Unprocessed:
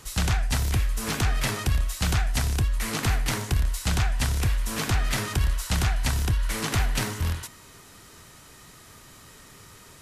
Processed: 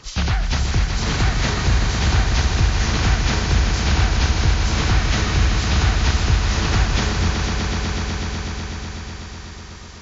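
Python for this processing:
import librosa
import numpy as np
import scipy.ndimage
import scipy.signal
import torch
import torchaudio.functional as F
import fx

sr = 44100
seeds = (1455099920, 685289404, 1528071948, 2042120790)

y = fx.freq_compress(x, sr, knee_hz=1900.0, ratio=1.5)
y = fx.echo_swell(y, sr, ms=124, loudest=5, wet_db=-8)
y = F.gain(torch.from_numpy(y), 4.0).numpy()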